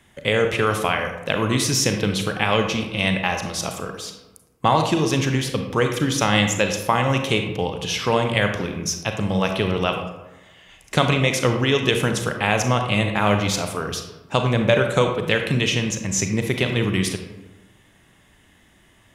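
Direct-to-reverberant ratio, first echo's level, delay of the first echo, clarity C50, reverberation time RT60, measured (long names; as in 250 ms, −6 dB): 4.5 dB, no echo audible, no echo audible, 6.0 dB, 1.1 s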